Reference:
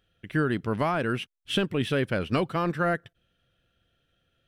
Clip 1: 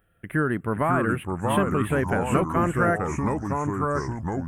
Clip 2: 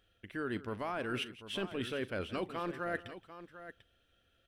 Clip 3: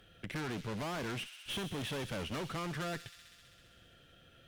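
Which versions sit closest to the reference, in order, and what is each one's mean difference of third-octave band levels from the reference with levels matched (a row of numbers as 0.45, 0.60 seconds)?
2, 1, 3; 5.0, 7.5, 10.5 decibels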